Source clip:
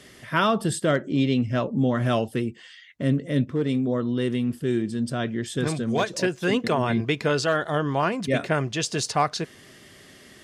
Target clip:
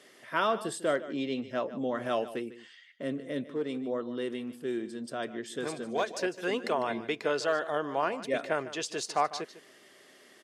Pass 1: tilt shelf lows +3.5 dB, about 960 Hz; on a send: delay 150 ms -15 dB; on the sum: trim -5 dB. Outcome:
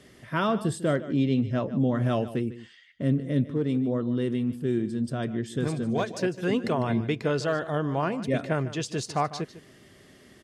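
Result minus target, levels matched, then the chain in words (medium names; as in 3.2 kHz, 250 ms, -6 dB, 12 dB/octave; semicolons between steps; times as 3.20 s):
500 Hz band -2.5 dB
high-pass 440 Hz 12 dB/octave; tilt shelf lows +3.5 dB, about 960 Hz; on a send: delay 150 ms -15 dB; on the sum: trim -5 dB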